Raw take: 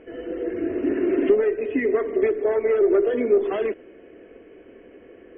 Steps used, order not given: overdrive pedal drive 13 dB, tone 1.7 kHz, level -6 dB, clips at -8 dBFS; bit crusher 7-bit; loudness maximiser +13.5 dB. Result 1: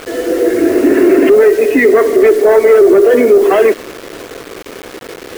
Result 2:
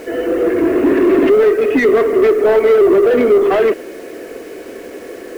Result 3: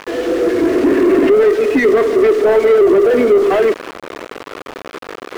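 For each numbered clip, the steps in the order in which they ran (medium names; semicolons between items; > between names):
overdrive pedal > bit crusher > loudness maximiser; loudness maximiser > overdrive pedal > bit crusher; bit crusher > loudness maximiser > overdrive pedal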